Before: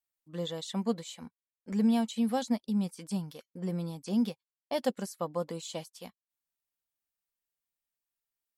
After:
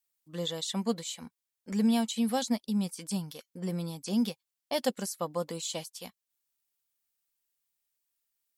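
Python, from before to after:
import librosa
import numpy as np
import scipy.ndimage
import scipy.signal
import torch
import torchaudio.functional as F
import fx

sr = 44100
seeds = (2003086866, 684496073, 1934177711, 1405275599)

y = fx.high_shelf(x, sr, hz=2600.0, db=8.5)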